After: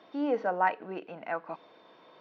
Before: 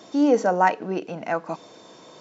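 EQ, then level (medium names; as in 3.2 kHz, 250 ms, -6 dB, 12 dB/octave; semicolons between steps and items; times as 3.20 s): Gaussian low-pass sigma 2.6 samples; distance through air 190 m; tilt EQ +3.5 dB/octave; -5.5 dB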